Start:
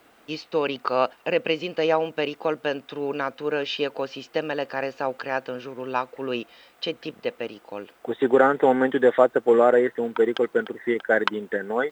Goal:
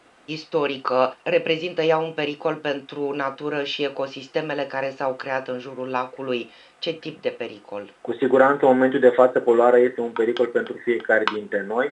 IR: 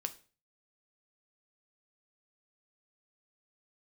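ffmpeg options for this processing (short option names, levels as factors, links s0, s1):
-filter_complex "[1:a]atrim=start_sample=2205,atrim=end_sample=3969[s0];[0:a][s0]afir=irnorm=-1:irlink=0,aresample=22050,aresample=44100,volume=1.33"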